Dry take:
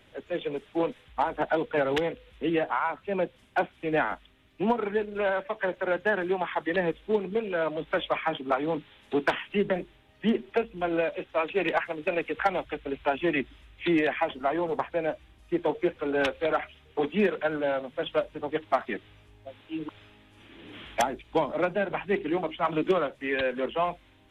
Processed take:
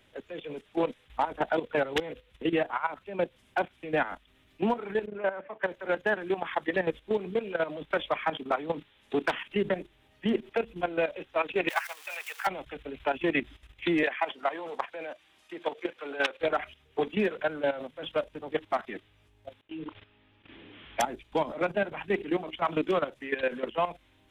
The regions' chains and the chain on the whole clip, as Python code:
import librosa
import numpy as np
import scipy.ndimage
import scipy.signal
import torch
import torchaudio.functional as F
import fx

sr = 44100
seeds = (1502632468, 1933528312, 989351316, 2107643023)

y = fx.chain(x, sr, fx.bandpass_edges(low_hz=120.0, high_hz=2400.0),
    fx.air_absorb(metres=180.0), at=(5.06, 5.63))
y = fx.chain(y, sr, fx.zero_step(step_db=-40.5),
    fx.highpass(hz=820.0, slope=24),
    fx.high_shelf(hz=5000.0, db=8.0), at=(11.69, 12.47))
y = fx.chain(y, sr, fx.weighting(curve='A'),
    fx.band_squash(depth_pct=40), at=(14.03, 16.41))
y = fx.chain(y, sr, fx.lowpass(hz=3700.0, slope=24),
    fx.gate_hold(open_db=-44.0, close_db=-54.0, hold_ms=71.0, range_db=-21, attack_ms=1.4, release_ms=100.0),
    fx.doubler(ms=31.0, db=-12.0), at=(19.61, 21.0))
y = fx.high_shelf(y, sr, hz=3800.0, db=4.5)
y = fx.level_steps(y, sr, step_db=13)
y = F.gain(torch.from_numpy(y), 1.5).numpy()